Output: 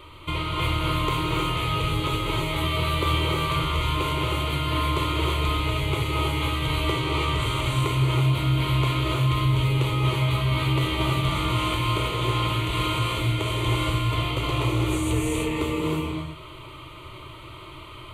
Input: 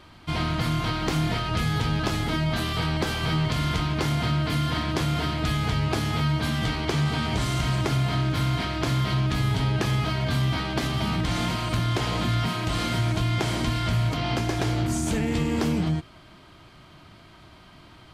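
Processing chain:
mains-hum notches 50/100/150 Hz
downward compressor, threshold −29 dBFS, peak gain reduction 9 dB
phaser with its sweep stopped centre 1,100 Hz, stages 8
reverb whose tail is shaped and stops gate 360 ms rising, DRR −2.5 dB
level +7.5 dB

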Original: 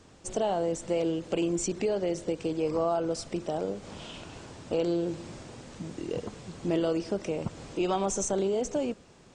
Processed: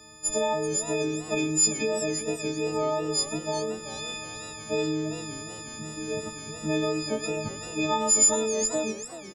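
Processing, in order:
every partial snapped to a pitch grid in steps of 6 semitones
slap from a distant wall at 20 metres, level −14 dB
feedback echo with a swinging delay time 385 ms, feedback 33%, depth 189 cents, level −14 dB

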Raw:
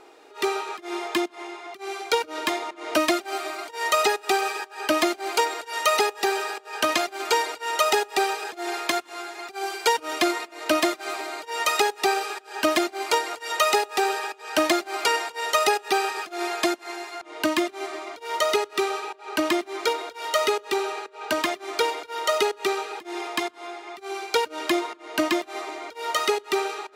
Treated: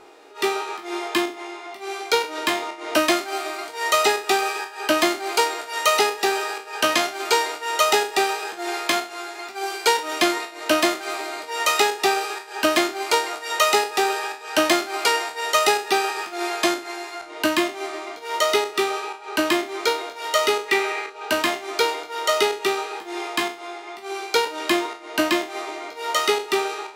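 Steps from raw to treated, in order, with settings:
peak hold with a decay on every bin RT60 0.37 s
0:20.68–0:21.10: parametric band 2,100 Hz +13.5 dB 0.41 octaves
level +1.5 dB

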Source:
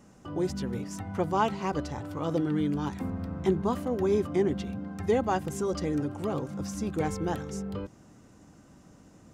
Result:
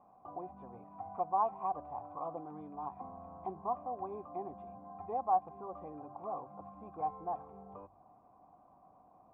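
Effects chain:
hum removal 48.46 Hz, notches 3
in parallel at +2 dB: downward compressor, threshold −40 dBFS, peak gain reduction 19 dB
on the sum: formant resonators in series a
level +3 dB

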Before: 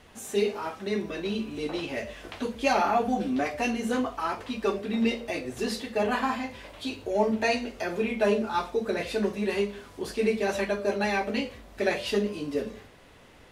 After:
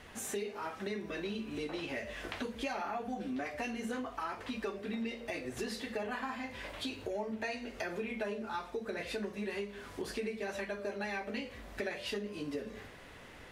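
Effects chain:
parametric band 1,800 Hz +4.5 dB 0.87 octaves
downward compressor 6 to 1, threshold −36 dBFS, peak gain reduction 16.5 dB

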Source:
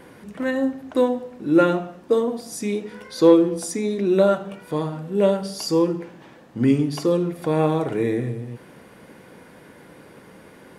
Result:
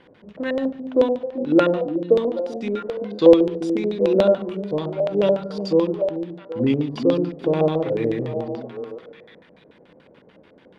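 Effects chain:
mu-law and A-law mismatch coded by A
echo through a band-pass that steps 390 ms, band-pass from 230 Hz, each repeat 1.4 octaves, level −4 dB
auto-filter low-pass square 6.9 Hz 570–3,400 Hz
level −2.5 dB

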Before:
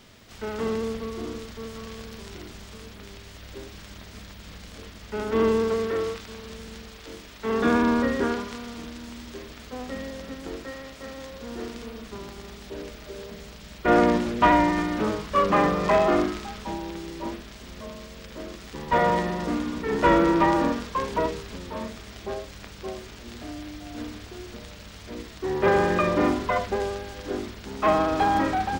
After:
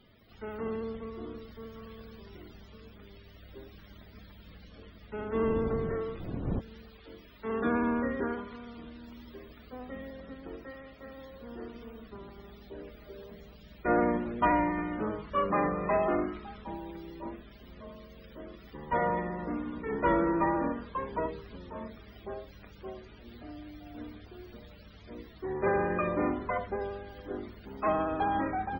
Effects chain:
0:05.12–0:06.59: wind on the microphone 240 Hz −28 dBFS
spectral peaks only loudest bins 64
level −7.5 dB

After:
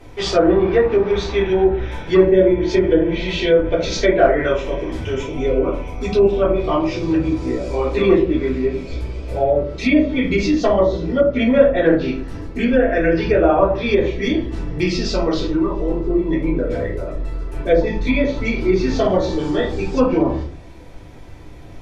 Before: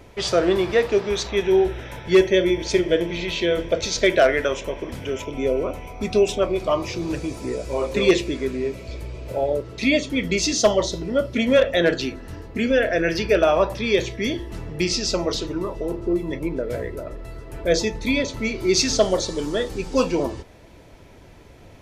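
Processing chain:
rectangular room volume 230 cubic metres, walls furnished, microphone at 3.6 metres
treble cut that deepens with the level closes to 1,300 Hz, closed at −7 dBFS
level −3 dB

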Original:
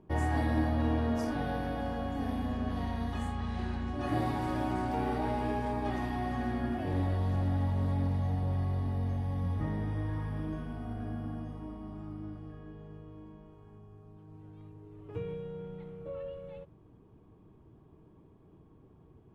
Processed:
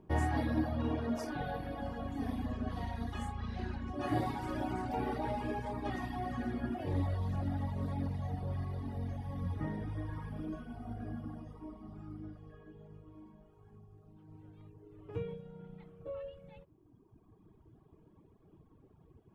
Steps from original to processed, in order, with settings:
reverb reduction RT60 2 s

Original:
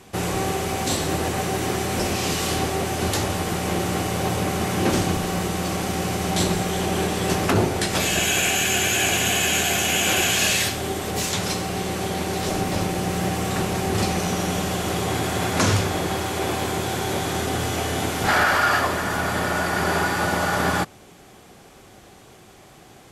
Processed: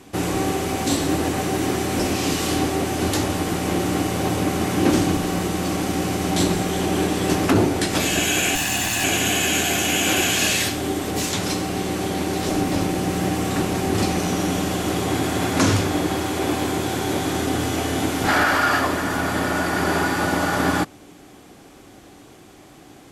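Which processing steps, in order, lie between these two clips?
0:08.55–0:09.04: lower of the sound and its delayed copy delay 1.1 ms
parametric band 290 Hz +11 dB 0.34 octaves

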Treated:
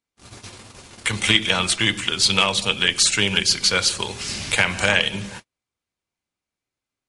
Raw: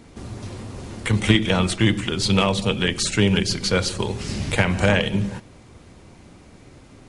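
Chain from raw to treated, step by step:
noise gate −33 dBFS, range −38 dB
tilt shelving filter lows −8.5 dB, about 810 Hz
notch filter 1,900 Hz, Q 25
level −1 dB

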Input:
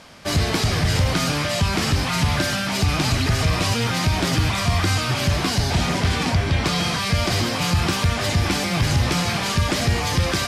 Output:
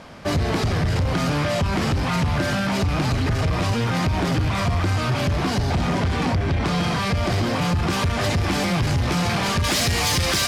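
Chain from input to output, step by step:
high-shelf EQ 2,300 Hz −11.5 dB, from 0:07.90 −6.5 dB, from 0:09.64 +7.5 dB
downward compressor, threshold −20 dBFS, peak gain reduction 6 dB
soft clipping −22 dBFS, distortion −14 dB
level +6 dB

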